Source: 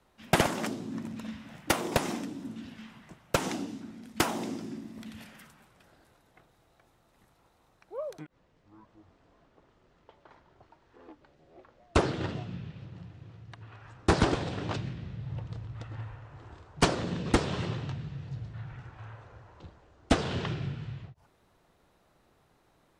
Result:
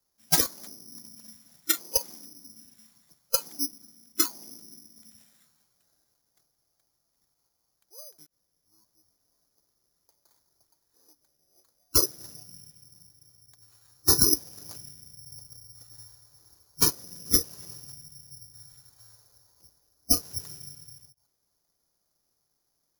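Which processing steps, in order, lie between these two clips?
spectral noise reduction 24 dB; in parallel at -2.5 dB: compressor, threshold -42 dBFS, peak gain reduction 20.5 dB; on the sum: careless resampling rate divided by 8×, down filtered, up zero stuff; maximiser +1.5 dB; gain -1 dB

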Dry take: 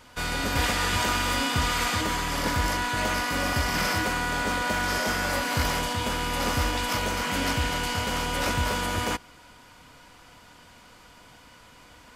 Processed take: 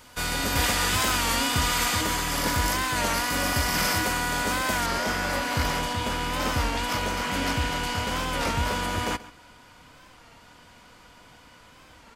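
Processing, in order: high shelf 6300 Hz +8.5 dB, from 4.87 s -3 dB; outdoor echo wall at 23 m, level -18 dB; record warp 33 1/3 rpm, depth 100 cents

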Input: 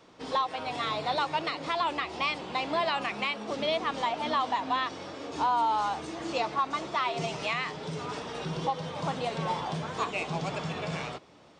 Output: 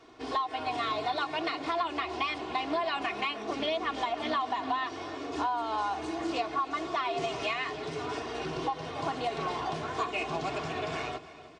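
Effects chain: high shelf 5600 Hz -5.5 dB; comb 2.8 ms, depth 72%; compressor, threshold -27 dBFS, peak gain reduction 7.5 dB; on a send: feedback echo 0.306 s, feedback 50%, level -17 dB; on the sum: Doppler distortion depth 0.12 ms

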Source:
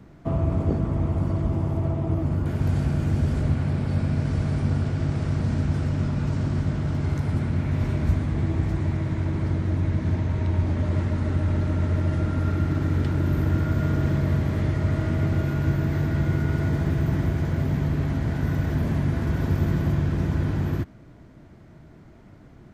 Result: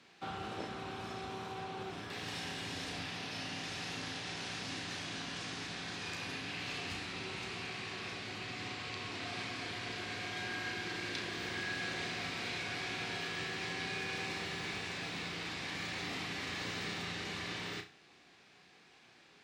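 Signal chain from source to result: on a send: flutter echo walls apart 6.8 m, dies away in 0.33 s; on the sum: wide varispeed 1.17×; band-pass 4000 Hz, Q 1.5; gain +7 dB

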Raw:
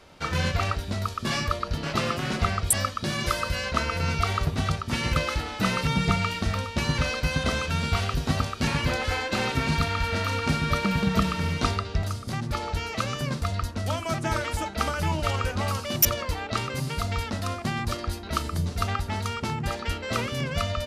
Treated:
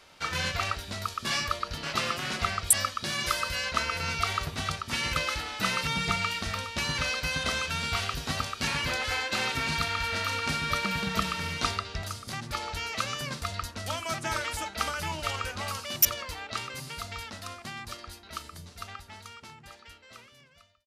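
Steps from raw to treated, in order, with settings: ending faded out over 6.59 s; tilt shelf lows -6 dB, about 780 Hz; gain -4.5 dB

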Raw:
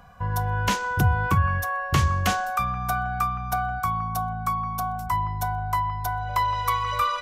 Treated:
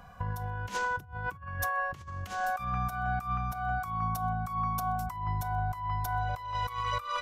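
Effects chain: negative-ratio compressor -28 dBFS, ratio -0.5; gain -4.5 dB

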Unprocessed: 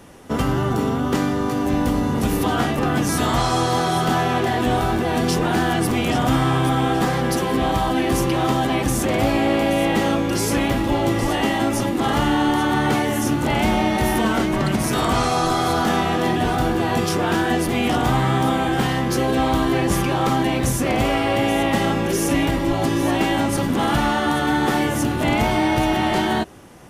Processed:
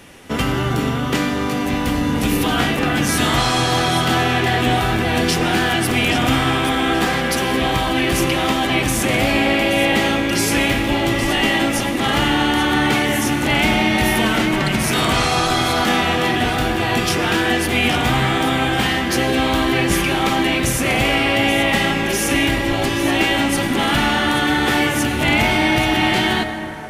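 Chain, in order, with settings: EQ curve 1100 Hz 0 dB, 2400 Hz +10 dB, 5900 Hz +4 dB; reverb RT60 4.4 s, pre-delay 78 ms, DRR 8 dB

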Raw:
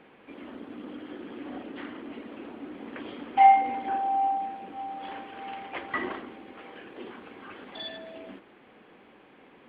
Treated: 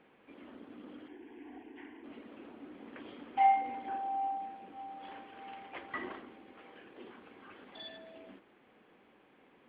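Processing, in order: 1.08–2.04 fixed phaser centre 850 Hz, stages 8; gain -9 dB

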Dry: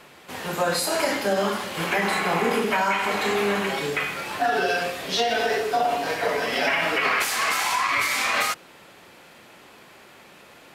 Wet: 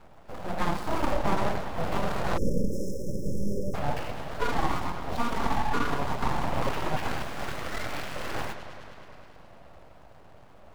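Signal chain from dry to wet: median filter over 25 samples; bell 300 Hz +14 dB 1.1 oct; on a send: analogue delay 0.105 s, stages 4096, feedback 81%, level -12 dB; on the sum: full-wave rectifier; spectral delete 2.37–3.74, 600–5100 Hz; gain -4.5 dB

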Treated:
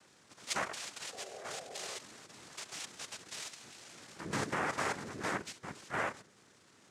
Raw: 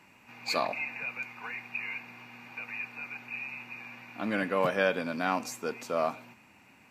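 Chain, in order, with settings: level quantiser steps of 10 dB; noise vocoder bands 3; painted sound noise, 1.12–1.98, 360–820 Hz -46 dBFS; gain -3.5 dB

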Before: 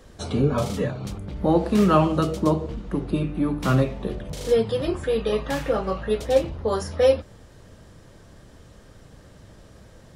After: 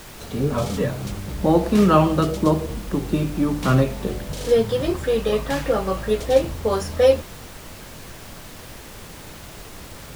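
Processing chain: opening faded in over 0.73 s; added noise pink -42 dBFS; gain +2.5 dB

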